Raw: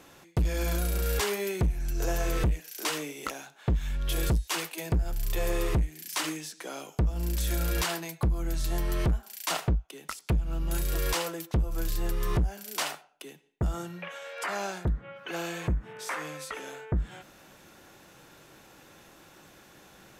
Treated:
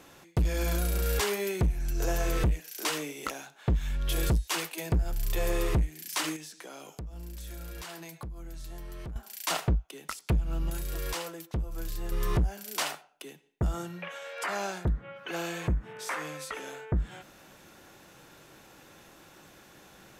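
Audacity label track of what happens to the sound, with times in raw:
6.360000	9.160000	compression 4:1, threshold -41 dBFS
10.700000	12.120000	gain -5.5 dB

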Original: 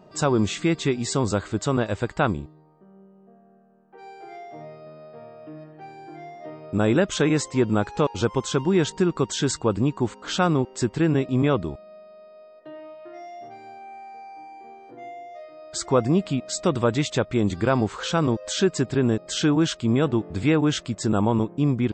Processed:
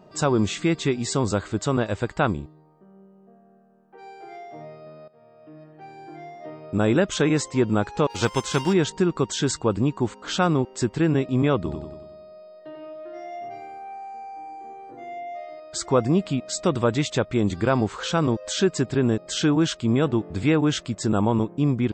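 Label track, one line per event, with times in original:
5.080000	6.020000	fade in, from -16.5 dB
8.090000	8.720000	formants flattened exponent 0.6
11.560000	15.600000	feedback delay 93 ms, feedback 52%, level -4.5 dB

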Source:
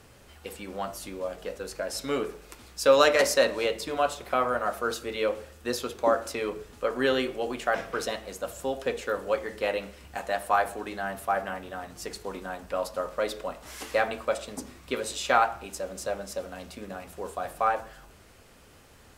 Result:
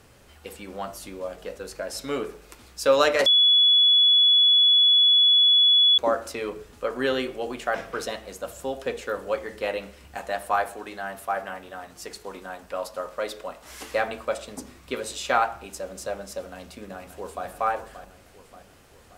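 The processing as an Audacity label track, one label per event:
3.260000	5.980000	bleep 3.4 kHz -14 dBFS
10.640000	13.700000	bass shelf 270 Hz -6.5 dB
16.400000	17.460000	echo throw 580 ms, feedback 55%, level -11 dB

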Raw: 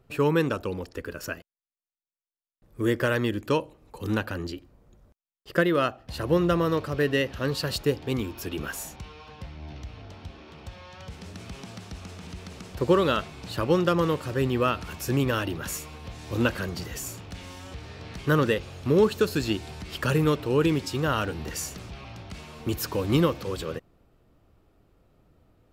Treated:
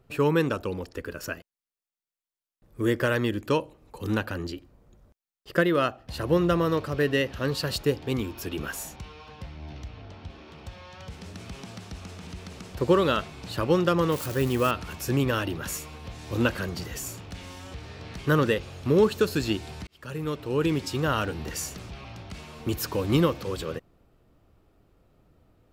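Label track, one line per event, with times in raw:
9.880000	10.300000	distance through air 62 m
14.120000	14.710000	zero-crossing glitches of -27 dBFS
19.870000	20.870000	fade in

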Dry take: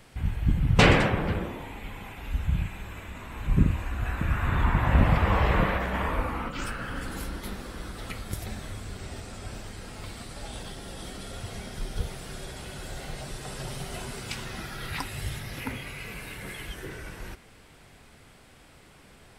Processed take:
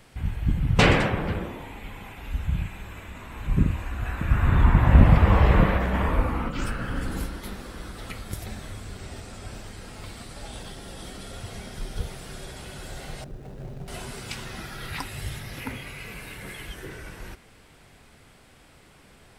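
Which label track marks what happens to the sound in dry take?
4.310000	7.260000	bass shelf 460 Hz +7 dB
13.240000	13.880000	median filter over 41 samples

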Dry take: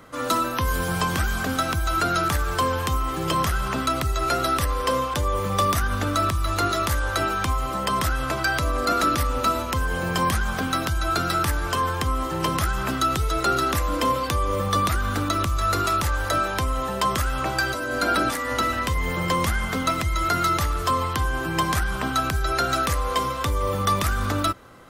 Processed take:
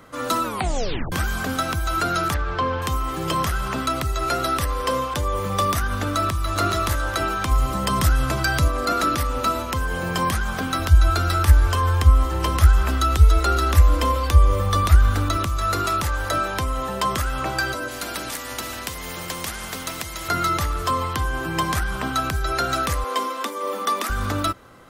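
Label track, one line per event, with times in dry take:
0.440000	0.440000	tape stop 0.68 s
2.340000	2.820000	Bessel low-pass 3.2 kHz, order 4
6.130000	6.530000	echo throw 420 ms, feedback 40%, level -4.5 dB
7.510000	8.680000	tone controls bass +8 dB, treble +4 dB
10.790000	15.370000	resonant low shelf 100 Hz +9 dB, Q 3
17.880000	20.290000	spectrum-flattening compressor 2:1
23.040000	24.100000	Chebyshev high-pass 210 Hz, order 8

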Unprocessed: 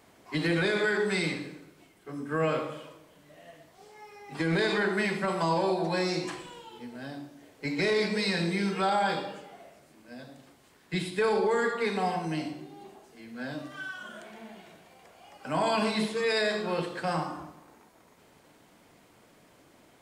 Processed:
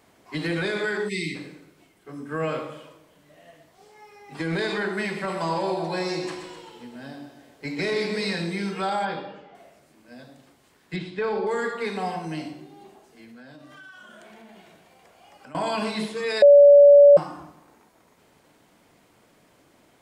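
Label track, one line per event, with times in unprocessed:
1.080000	1.350000	spectral selection erased 430–1800 Hz
5.040000	8.350000	feedback delay 129 ms, feedback 57%, level -9 dB
9.050000	9.550000	distance through air 190 m
10.960000	11.470000	distance through air 170 m
13.240000	15.550000	compression, threshold -43 dBFS
16.420000	17.170000	bleep 573 Hz -7.5 dBFS

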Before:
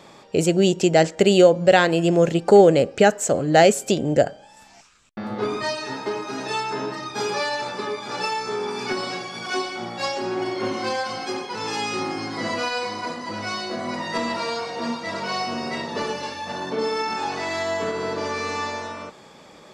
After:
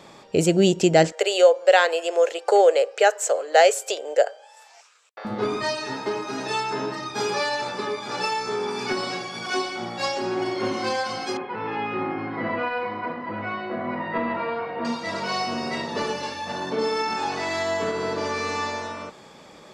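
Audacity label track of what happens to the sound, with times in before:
1.120000	5.250000	elliptic high-pass 460 Hz, stop band 70 dB
11.370000	14.850000	low-pass 2.4 kHz 24 dB/octave

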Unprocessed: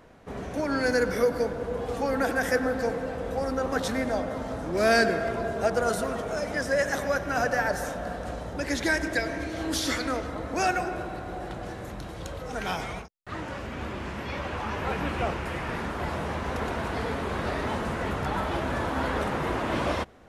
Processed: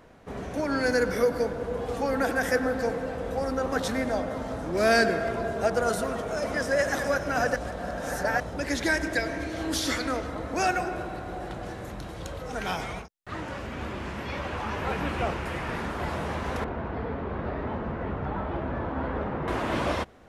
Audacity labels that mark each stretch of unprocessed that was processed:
6.000000	6.720000	echo throw 420 ms, feedback 65%, level -6 dB
7.560000	8.400000	reverse
16.640000	19.480000	tape spacing loss at 10 kHz 42 dB

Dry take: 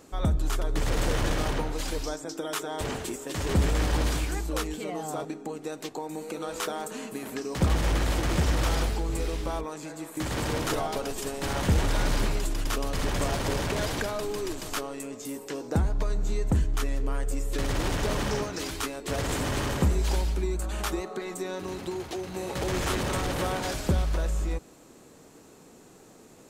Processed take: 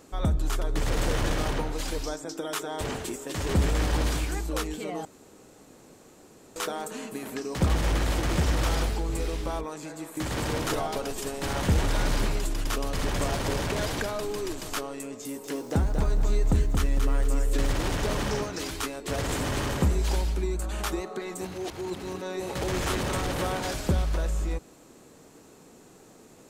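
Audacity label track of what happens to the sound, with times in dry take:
5.050000	6.560000	room tone
15.210000	17.730000	bit-crushed delay 227 ms, feedback 35%, word length 9-bit, level -4.5 dB
21.410000	22.400000	reverse

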